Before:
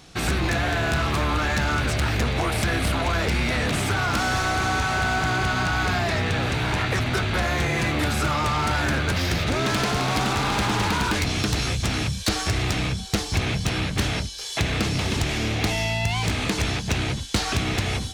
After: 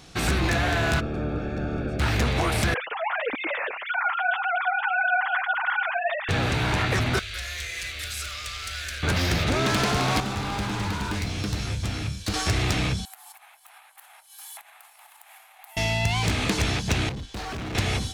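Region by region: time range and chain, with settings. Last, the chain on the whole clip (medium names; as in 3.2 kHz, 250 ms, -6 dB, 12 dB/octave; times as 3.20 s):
0.99–1.99 s: spectral peaks clipped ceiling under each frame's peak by 14 dB + boxcar filter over 44 samples
2.74–6.29 s: formants replaced by sine waves + flange 1.7 Hz, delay 3.3 ms, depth 5.8 ms, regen -18%
7.19–9.03 s: amplifier tone stack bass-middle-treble 10-0-10 + hard clipper -21.5 dBFS + static phaser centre 370 Hz, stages 4
10.20–12.34 s: bass shelf 200 Hz +6 dB + feedback comb 100 Hz, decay 0.55 s, mix 70%
13.05–15.77 s: FFT filter 610 Hz 0 dB, 5.7 kHz -19 dB, 12 kHz +11 dB + compression 12:1, threshold -35 dBFS + elliptic high-pass 790 Hz, stop band 50 dB
17.09–17.75 s: low-pass 1.5 kHz 6 dB/octave + hard clipper -31 dBFS
whole clip: none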